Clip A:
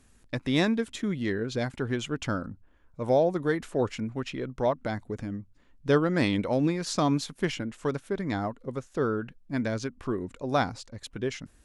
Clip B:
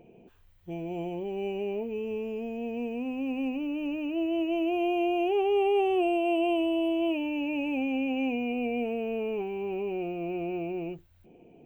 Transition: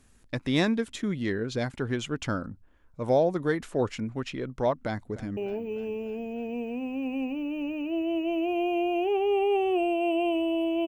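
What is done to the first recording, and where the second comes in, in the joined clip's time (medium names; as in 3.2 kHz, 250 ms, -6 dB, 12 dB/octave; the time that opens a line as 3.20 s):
clip A
4.85–5.37 s: echo throw 300 ms, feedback 65%, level -16.5 dB
5.37 s: go over to clip B from 1.61 s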